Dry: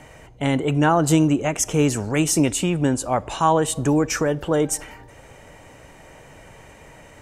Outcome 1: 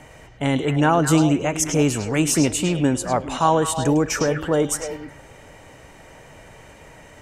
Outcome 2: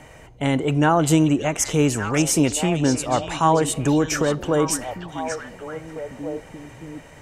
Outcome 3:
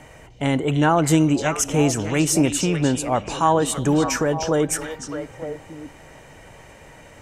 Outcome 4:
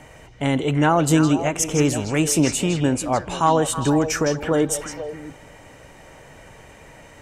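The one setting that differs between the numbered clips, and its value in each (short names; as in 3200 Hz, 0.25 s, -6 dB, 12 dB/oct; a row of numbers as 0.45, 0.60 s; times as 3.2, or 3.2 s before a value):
delay with a stepping band-pass, time: 0.104, 0.582, 0.303, 0.161 s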